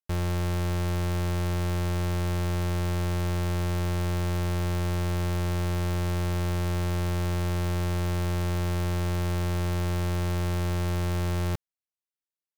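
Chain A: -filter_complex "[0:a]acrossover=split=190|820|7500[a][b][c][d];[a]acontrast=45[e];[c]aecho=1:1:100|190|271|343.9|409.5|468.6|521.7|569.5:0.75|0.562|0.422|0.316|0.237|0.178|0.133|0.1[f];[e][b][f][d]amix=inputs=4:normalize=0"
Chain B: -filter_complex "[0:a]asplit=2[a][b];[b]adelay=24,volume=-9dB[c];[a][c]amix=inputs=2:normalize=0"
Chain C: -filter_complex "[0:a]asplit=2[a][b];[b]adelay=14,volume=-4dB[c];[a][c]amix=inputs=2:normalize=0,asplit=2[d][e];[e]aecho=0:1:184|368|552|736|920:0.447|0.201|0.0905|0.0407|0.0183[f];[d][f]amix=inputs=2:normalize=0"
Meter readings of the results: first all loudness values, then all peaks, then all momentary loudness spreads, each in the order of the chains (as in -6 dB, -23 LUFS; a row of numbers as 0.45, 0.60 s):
-24.0, -27.0, -27.0 LUFS; -17.5, -24.0, -18.5 dBFS; 0, 0, 0 LU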